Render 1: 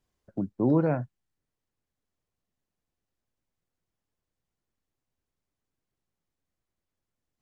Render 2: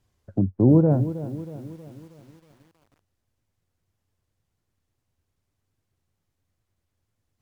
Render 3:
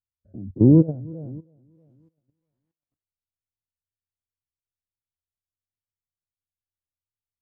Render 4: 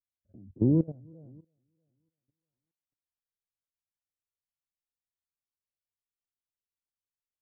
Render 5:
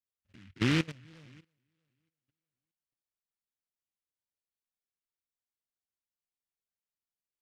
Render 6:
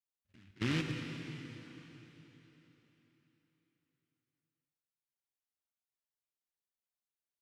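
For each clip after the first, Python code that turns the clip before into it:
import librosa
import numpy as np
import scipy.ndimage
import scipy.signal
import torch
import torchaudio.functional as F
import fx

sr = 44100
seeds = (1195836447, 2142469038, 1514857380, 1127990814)

y1 = fx.peak_eq(x, sr, hz=93.0, db=12.5, octaves=0.76)
y1 = fx.env_lowpass_down(y1, sr, base_hz=580.0, full_db=-26.0)
y1 = fx.echo_crushed(y1, sr, ms=318, feedback_pct=55, bits=9, wet_db=-13.0)
y1 = y1 * 10.0 ** (6.0 / 20.0)
y2 = fx.spec_dilate(y1, sr, span_ms=60)
y2 = fx.level_steps(y2, sr, step_db=15)
y2 = fx.spectral_expand(y2, sr, expansion=1.5)
y2 = y2 * 10.0 ** (2.5 / 20.0)
y3 = fx.level_steps(y2, sr, step_db=14)
y3 = y3 * 10.0 ** (-7.5 / 20.0)
y4 = fx.noise_mod_delay(y3, sr, seeds[0], noise_hz=2100.0, depth_ms=0.28)
y4 = y4 * 10.0 ** (-4.0 / 20.0)
y5 = fx.rev_plate(y4, sr, seeds[1], rt60_s=4.0, hf_ratio=0.95, predelay_ms=0, drr_db=2.5)
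y5 = y5 * 10.0 ** (-7.0 / 20.0)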